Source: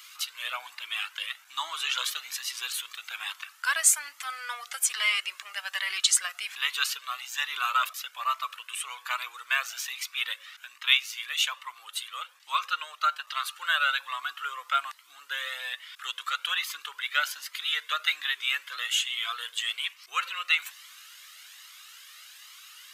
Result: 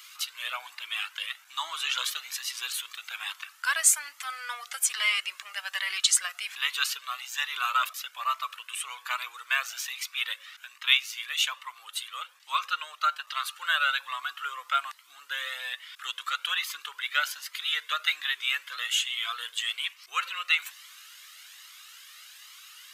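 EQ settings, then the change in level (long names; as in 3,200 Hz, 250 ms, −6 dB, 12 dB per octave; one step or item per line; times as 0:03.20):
low-shelf EQ 460 Hz −3 dB
0.0 dB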